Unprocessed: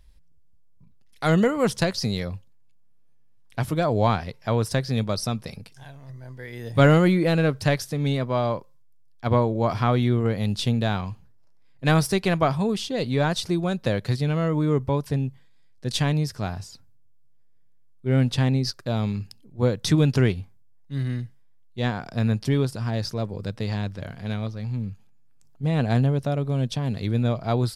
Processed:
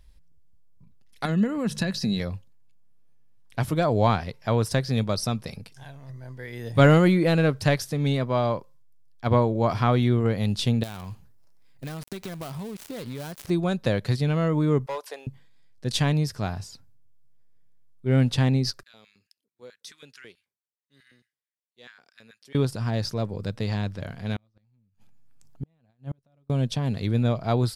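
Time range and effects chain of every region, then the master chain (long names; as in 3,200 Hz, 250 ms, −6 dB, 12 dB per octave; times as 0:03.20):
0:01.25–0:02.20: mains-hum notches 50/100/150 Hz + downward compressor 5 to 1, threshold −29 dBFS + hollow resonant body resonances 210/1,700/2,600/3,900 Hz, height 12 dB, ringing for 30 ms
0:10.83–0:13.50: gap after every zero crossing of 0.18 ms + high-shelf EQ 6,900 Hz +9.5 dB + downward compressor 12 to 1, threshold −31 dBFS
0:14.86–0:15.27: inverse Chebyshev high-pass filter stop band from 190 Hz, stop band 50 dB + hard clipping −26 dBFS
0:18.83–0:22.55: guitar amp tone stack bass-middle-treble 6-0-2 + auto-filter high-pass square 4.6 Hz 510–1,600 Hz
0:24.36–0:26.50: notch filter 430 Hz, Q 9.6 + compressor whose output falls as the input rises −24 dBFS, ratio −0.5 + gate with flip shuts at −22 dBFS, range −40 dB
whole clip: no processing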